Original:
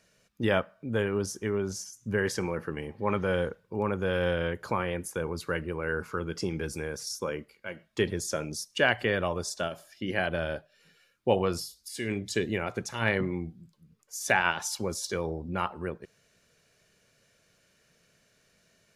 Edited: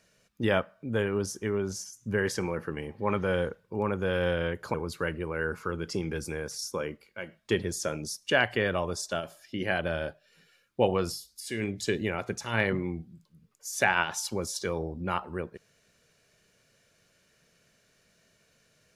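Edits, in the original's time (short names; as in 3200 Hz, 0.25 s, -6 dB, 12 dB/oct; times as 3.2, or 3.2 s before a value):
4.74–5.22 cut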